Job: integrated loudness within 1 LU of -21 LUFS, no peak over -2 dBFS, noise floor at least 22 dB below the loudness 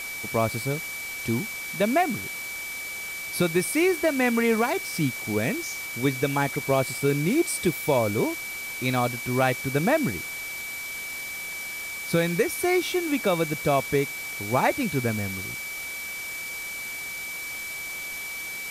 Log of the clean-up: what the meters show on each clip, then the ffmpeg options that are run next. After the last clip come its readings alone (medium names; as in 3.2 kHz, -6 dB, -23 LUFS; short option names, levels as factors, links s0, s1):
steady tone 2.3 kHz; tone level -33 dBFS; noise floor -35 dBFS; noise floor target -49 dBFS; loudness -26.5 LUFS; peak level -10.0 dBFS; loudness target -21.0 LUFS
-> -af "bandreject=f=2300:w=30"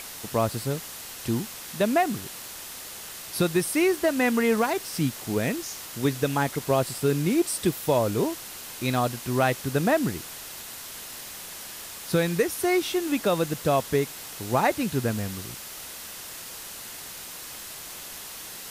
steady tone not found; noise floor -40 dBFS; noise floor target -50 dBFS
-> -af "afftdn=nr=10:nf=-40"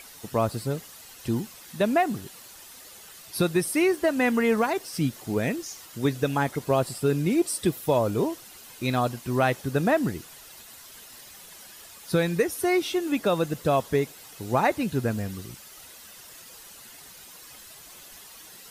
noise floor -47 dBFS; noise floor target -48 dBFS
-> -af "afftdn=nr=6:nf=-47"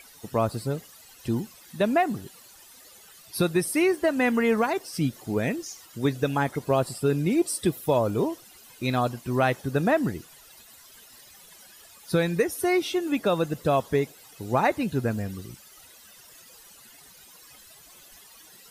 noise floor -51 dBFS; loudness -26.0 LUFS; peak level -11.0 dBFS; loudness target -21.0 LUFS
-> -af "volume=1.78"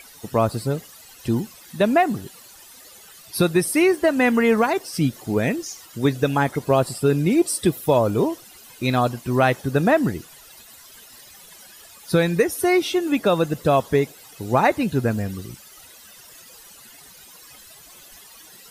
loudness -21.0 LUFS; peak level -6.0 dBFS; noise floor -46 dBFS